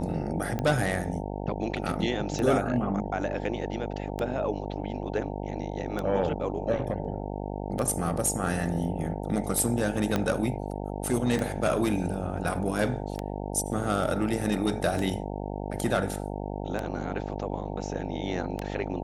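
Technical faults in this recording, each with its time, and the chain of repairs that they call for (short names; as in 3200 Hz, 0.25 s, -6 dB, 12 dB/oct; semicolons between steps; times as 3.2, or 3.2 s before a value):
buzz 50 Hz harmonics 18 -34 dBFS
tick 33 1/3 rpm -17 dBFS
10.16 pop -12 dBFS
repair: de-click; de-hum 50 Hz, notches 18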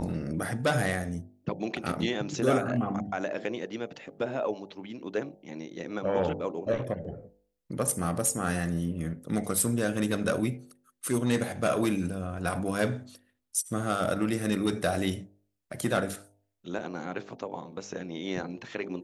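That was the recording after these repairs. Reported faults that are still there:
10.16 pop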